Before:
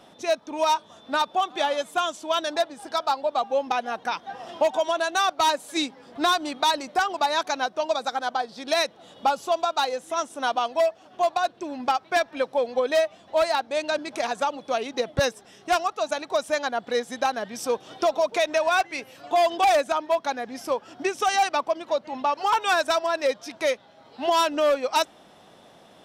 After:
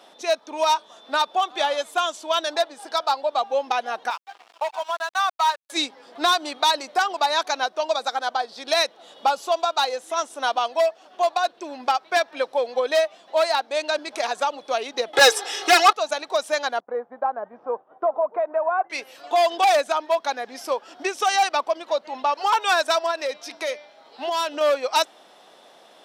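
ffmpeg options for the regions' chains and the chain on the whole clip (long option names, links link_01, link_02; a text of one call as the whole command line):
ffmpeg -i in.wav -filter_complex "[0:a]asettb=1/sr,asplit=3[link_01][link_02][link_03];[link_01]atrim=end=4.104[link_04];[link_02]atrim=start=4.1:end=5.7,asetpts=PTS-STARTPTS,afade=type=in:duration=0.004:curve=qsin,afade=type=out:start_time=1.596:duration=0.004:curve=qsin,highpass=frequency=920:width=0.5412,highpass=frequency=920:width=1.3066,tiltshelf=frequency=1400:gain=9,aeval=exprs='sgn(val(0))*max(abs(val(0))-0.00891,0)':channel_layout=same[link_05];[link_03]atrim=start=5.696[link_06];[link_04][link_05]acrossfade=duration=0.004:curve1=hsin:curve2=qsin[link_07];[link_07][link_06]acrossfade=duration=0.004:curve1=qsin:curve2=hsin,asettb=1/sr,asplit=3[link_08][link_09][link_10];[link_08]atrim=end=15.134[link_11];[link_09]atrim=start=15.13:end=15.93,asetpts=PTS-STARTPTS,afade=type=in:duration=0.004:curve=qsin,afade=type=out:start_time=0.796:duration=0.004:curve=qsin,asplit=2[link_12][link_13];[link_13]highpass=frequency=720:poles=1,volume=24dB,asoftclip=type=tanh:threshold=-10.5dB[link_14];[link_12][link_14]amix=inputs=2:normalize=0,lowpass=frequency=7500:poles=1,volume=-6dB,aecho=1:1:2.4:0.95,atrim=end_sample=35280,asubboost=boost=5.5:cutoff=210[link_15];[link_10]atrim=start=15.926[link_16];[link_11][link_15]acrossfade=duration=0.004:curve1=hsin:curve2=qsin[link_17];[link_17][link_16]acrossfade=duration=0.004:curve1=qsin:curve2=hsin,asettb=1/sr,asplit=3[link_18][link_19][link_20];[link_18]atrim=end=16.804[link_21];[link_19]atrim=start=16.8:end=18.9,asetpts=PTS-STARTPTS,afade=type=in:duration=0.004:curve=qsin,afade=type=out:start_time=2.096:duration=0.004:curve=qsin,agate=range=-33dB:threshold=-38dB:ratio=3:release=100:detection=peak,lowpass=frequency=1200:width=0.5412,lowpass=frequency=1200:width=1.3066,equalizer=frequency=320:width=1.2:gain=-5[link_22];[link_20]atrim=start=18.896[link_23];[link_21][link_22]acrossfade=duration=0.004:curve1=hsin:curve2=qsin[link_24];[link_24][link_23]acrossfade=duration=0.004:curve1=qsin:curve2=hsin,asettb=1/sr,asplit=3[link_25][link_26][link_27];[link_25]atrim=end=23.114[link_28];[link_26]atrim=start=23.11:end=24.61,asetpts=PTS-STARTPTS,afade=type=in:duration=0.004:curve=qsin,afade=type=out:start_time=1.496:duration=0.004:curve=qsin,bandreject=frequency=296.4:width_type=h:width=4,bandreject=frequency=592.8:width_type=h:width=4,bandreject=frequency=889.2:width_type=h:width=4,bandreject=frequency=1185.6:width_type=h:width=4,bandreject=frequency=1482:width_type=h:width=4,bandreject=frequency=1778.4:width_type=h:width=4,bandreject=frequency=2074.8:width_type=h:width=4,bandreject=frequency=2371.2:width_type=h:width=4,bandreject=frequency=2667.6:width_type=h:width=4,bandreject=frequency=2964:width_type=h:width=4,bandreject=frequency=3260.4:width_type=h:width=4,bandreject=frequency=3556.8:width_type=h:width=4,bandreject=frequency=3853.2:width_type=h:width=4,bandreject=frequency=4149.6:width_type=h:width=4,bandreject=frequency=4446:width_type=h:width=4,bandreject=frequency=4742.4:width_type=h:width=4,bandreject=frequency=5038.8:width_type=h:width=4,bandreject=frequency=5335.2:width_type=h:width=4,bandreject=frequency=5631.6:width_type=h:width=4,bandreject=frequency=5928:width_type=h:width=4,acompressor=threshold=-27dB:ratio=2:attack=3.2:release=140:knee=1:detection=peak[link_29];[link_27]atrim=start=24.606[link_30];[link_28][link_29]acrossfade=duration=0.004:curve1=hsin:curve2=qsin[link_31];[link_31][link_30]acrossfade=duration=0.004:curve1=qsin:curve2=hsin,highpass=400,equalizer=frequency=4300:width=2.4:gain=3,volume=2dB" out.wav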